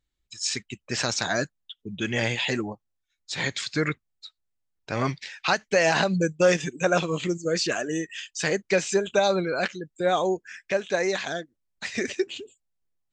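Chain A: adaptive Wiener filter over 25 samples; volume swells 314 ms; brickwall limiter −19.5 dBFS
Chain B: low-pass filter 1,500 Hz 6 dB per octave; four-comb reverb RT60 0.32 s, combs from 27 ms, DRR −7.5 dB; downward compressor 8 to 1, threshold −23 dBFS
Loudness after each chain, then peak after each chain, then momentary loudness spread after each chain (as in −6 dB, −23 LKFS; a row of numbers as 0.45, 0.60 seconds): −34.0, −28.5 LKFS; −19.5, −12.0 dBFS; 19, 7 LU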